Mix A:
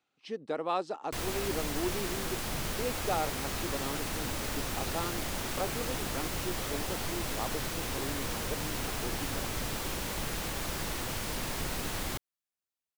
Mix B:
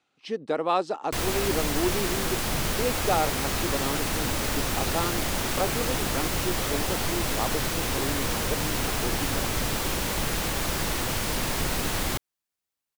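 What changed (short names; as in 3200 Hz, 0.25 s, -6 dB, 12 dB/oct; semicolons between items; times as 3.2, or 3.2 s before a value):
speech +7.0 dB; background +7.5 dB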